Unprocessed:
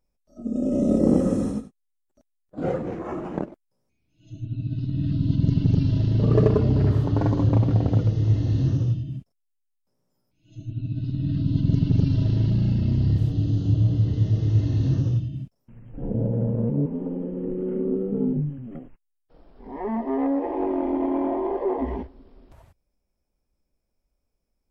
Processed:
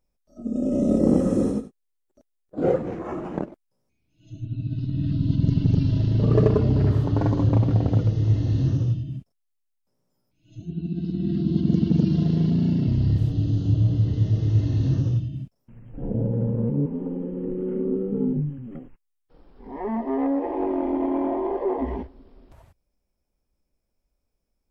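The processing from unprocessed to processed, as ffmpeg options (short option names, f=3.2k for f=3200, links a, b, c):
-filter_complex "[0:a]asettb=1/sr,asplit=3[a][b][c];[a]atrim=end=1.364[d];[b]atrim=start=1.36:end=2.76,asetpts=PTS-STARTPTS,afade=t=in:d=0.004:c=qsin,afade=t=out:st=1.396:d=0.004:c=qsin,equalizer=f=410:w=1.4:g=8[e];[c]atrim=start=2.756[f];[d][e]acrossfade=d=0.004:c1=hsin:c2=qsin[g];[g][f]acrossfade=d=0.004:c1=qsin:c2=hsin,asettb=1/sr,asplit=3[h][i][j];[h]atrim=end=10.624[k];[i]atrim=start=10.62:end=12.87,asetpts=PTS-STARTPTS,afade=t=in:d=0.004:c=qsin,afade=t=out:st=2.246:d=0.004:c=qsin,afreqshift=52[l];[j]atrim=start=12.866[m];[k][l]acrossfade=d=0.004:c1=hsin:c2=qsin[n];[n][m]acrossfade=d=0.004:c1=qsin:c2=hsin,asettb=1/sr,asplit=3[o][p][q];[o]atrim=end=16.214[r];[p]atrim=start=16.21:end=19.71,asetpts=PTS-STARTPTS,afade=t=in:d=0.004:c=qsin,afade=t=out:st=3.496:d=0.004:c=qsin,bandreject=f=650:w=5.2[s];[q]atrim=start=19.706[t];[r][s]acrossfade=d=0.004:c1=hsin:c2=qsin[u];[u][t]acrossfade=d=0.004:c1=qsin:c2=hsin"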